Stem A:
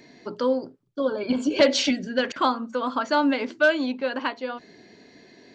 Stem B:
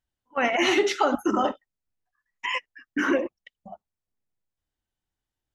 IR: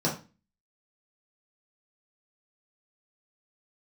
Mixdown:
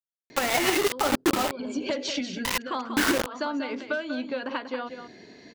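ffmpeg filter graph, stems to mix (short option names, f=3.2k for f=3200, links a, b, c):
-filter_complex "[0:a]acompressor=threshold=-29dB:ratio=6,adelay=300,volume=1.5dB,asplit=2[a][b];[b]volume=-8.5dB[c];[1:a]acrossover=split=2800[d][e];[e]acompressor=threshold=-35dB:ratio=4:attack=1:release=60[f];[d][f]amix=inputs=2:normalize=0,acrusher=bits=3:mix=0:aa=0.000001,volume=2dB,asplit=2[g][h];[h]apad=whole_len=257594[i];[a][i]sidechaincompress=threshold=-37dB:ratio=8:attack=16:release=142[j];[c]aecho=0:1:190:1[k];[j][g][k]amix=inputs=3:normalize=0,alimiter=limit=-16dB:level=0:latency=1:release=85"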